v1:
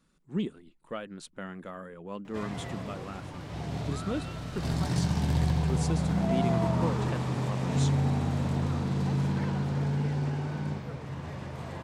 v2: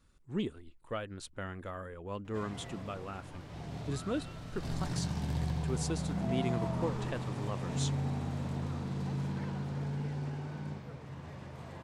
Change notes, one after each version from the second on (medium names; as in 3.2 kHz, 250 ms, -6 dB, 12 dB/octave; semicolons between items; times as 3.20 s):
speech: add resonant low shelf 130 Hz +7.5 dB, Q 3; background -7.5 dB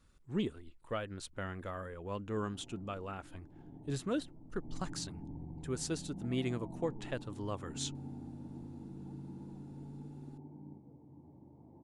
background: add cascade formant filter u